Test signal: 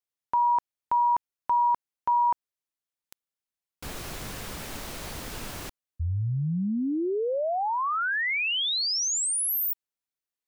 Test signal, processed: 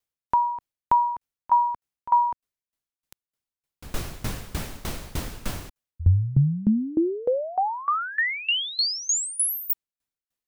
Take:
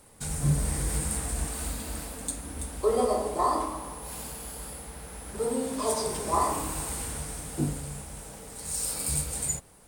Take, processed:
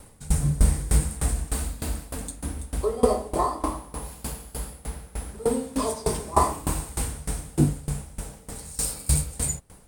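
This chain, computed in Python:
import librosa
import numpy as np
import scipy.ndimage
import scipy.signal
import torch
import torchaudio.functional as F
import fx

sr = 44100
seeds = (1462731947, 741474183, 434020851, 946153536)

y = fx.low_shelf(x, sr, hz=200.0, db=8.5)
y = fx.tremolo_decay(y, sr, direction='decaying', hz=3.3, depth_db=21)
y = F.gain(torch.from_numpy(y), 7.5).numpy()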